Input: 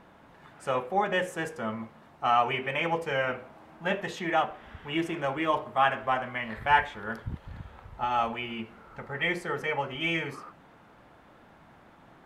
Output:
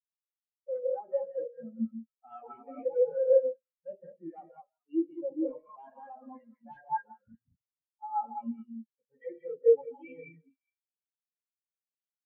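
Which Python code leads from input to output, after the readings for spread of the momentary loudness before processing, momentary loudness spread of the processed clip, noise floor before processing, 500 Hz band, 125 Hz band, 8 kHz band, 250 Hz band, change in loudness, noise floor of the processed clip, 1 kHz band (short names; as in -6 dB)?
15 LU, 23 LU, -56 dBFS, +2.5 dB, under -15 dB, n/a, -2.5 dB, -2.0 dB, under -85 dBFS, -12.0 dB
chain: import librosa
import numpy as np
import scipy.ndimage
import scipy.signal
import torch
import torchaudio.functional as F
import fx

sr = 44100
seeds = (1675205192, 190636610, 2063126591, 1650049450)

p1 = scipy.signal.sosfilt(scipy.signal.butter(4, 42.0, 'highpass', fs=sr, output='sos'), x)
p2 = fx.hum_notches(p1, sr, base_hz=50, count=3)
p3 = fx.small_body(p2, sr, hz=(280.0, 490.0, 2800.0), ring_ms=50, db=11)
p4 = fx.quant_dither(p3, sr, seeds[0], bits=6, dither='none')
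p5 = p4 + fx.echo_stepped(p4, sr, ms=209, hz=980.0, octaves=1.4, feedback_pct=70, wet_db=-7.5, dry=0)
p6 = 10.0 ** (-21.0 / 20.0) * (np.abs((p5 / 10.0 ** (-21.0 / 20.0) + 3.0) % 4.0 - 2.0) - 1.0)
p7 = fx.quant_float(p6, sr, bits=2)
p8 = fx.rev_gated(p7, sr, seeds[1], gate_ms=230, shape='rising', drr_db=1.0)
y = fx.spectral_expand(p8, sr, expansion=4.0)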